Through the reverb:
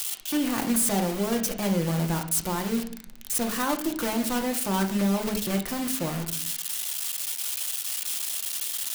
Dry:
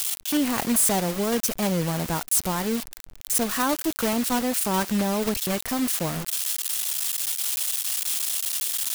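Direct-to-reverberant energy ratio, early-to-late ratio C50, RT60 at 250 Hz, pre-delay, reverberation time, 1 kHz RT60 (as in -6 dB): 3.5 dB, 10.5 dB, 1.0 s, 3 ms, 0.60 s, 0.55 s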